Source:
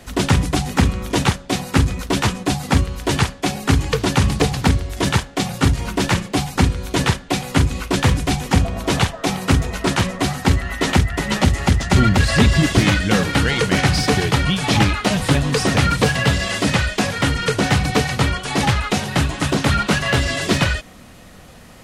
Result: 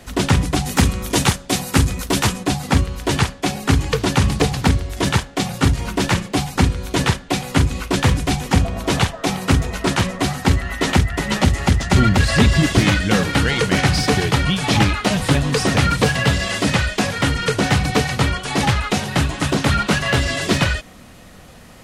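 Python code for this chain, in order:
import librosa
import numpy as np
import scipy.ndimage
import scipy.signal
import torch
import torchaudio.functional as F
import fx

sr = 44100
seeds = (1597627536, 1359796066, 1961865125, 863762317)

y = fx.high_shelf(x, sr, hz=fx.line((0.65, 5000.0), (2.43, 7900.0)), db=10.5, at=(0.65, 2.43), fade=0.02)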